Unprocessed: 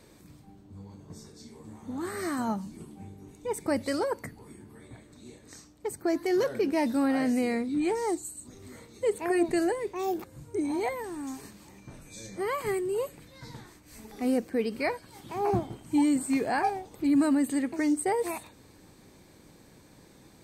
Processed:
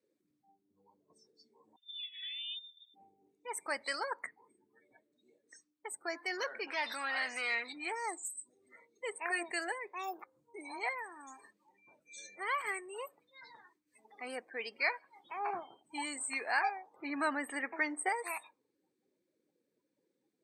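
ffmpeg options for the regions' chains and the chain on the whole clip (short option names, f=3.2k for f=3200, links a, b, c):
-filter_complex "[0:a]asettb=1/sr,asplit=3[a][b][c];[a]atrim=end=1.764[d];[b]atrim=start=1.76:end=2.94,asetpts=PTS-STARTPTS,afade=t=in:d=0.004:c=qsin,afade=t=out:st=1.176:d=0.004:c=qsin,agate=range=-13dB:threshold=-34dB:ratio=16:release=100:detection=peak,acompressor=threshold=-43dB:ratio=4:attack=3.2:release=140:knee=1:detection=peak,lowpass=f=3.2k:t=q:w=0.5098,lowpass=f=3.2k:t=q:w=0.6013,lowpass=f=3.2k:t=q:w=0.9,lowpass=f=3.2k:t=q:w=2.563,afreqshift=-3800[e];[c]atrim=start=2.936[f];[d][e]acrossfade=d=0.004:c1=hsin:c2=qsin[g];[g][f]acrossfade=d=0.004:c1=qsin:c2=hsin,asettb=1/sr,asplit=3[h][i][j];[h]atrim=end=6.674[k];[i]atrim=start=6.67:end=7.73,asetpts=PTS-STARTPTS,afade=t=in:d=0.004:c=qsin,afade=t=out:st=1.056:d=0.004:c=qsin,highshelf=f=2.6k:g=7,acompressor=threshold=-29dB:ratio=4:attack=3.2:release=140:knee=1:detection=peak,asplit=2[l][m];[m]highpass=f=720:p=1,volume=17dB,asoftclip=type=tanh:threshold=-23dB[n];[l][n]amix=inputs=2:normalize=0,lowpass=f=3.9k:p=1,volume=-6dB[o];[j]atrim=start=7.726[p];[k][o]acrossfade=d=0.004:c1=hsin:c2=qsin[q];[q][p]acrossfade=d=0.004:c1=qsin:c2=hsin,asettb=1/sr,asplit=3[r][s][t];[r]atrim=end=16.964[u];[s]atrim=start=16.96:end=18.09,asetpts=PTS-STARTPTS,afade=t=in:d=0.004:c=qsin,afade=t=out:st=1.126:d=0.004:c=qsin,equalizer=f=7.6k:t=o:w=2.4:g=-11.5,acontrast=62[v];[t]atrim=start=18.086[w];[u][v]acrossfade=d=0.004:c1=hsin:c2=qsin[x];[x][w]acrossfade=d=0.004:c1=qsin:c2=hsin,highshelf=f=3k:g=-6.5,afftdn=nr=33:nf=-49,highpass=1.5k,volume=5.5dB"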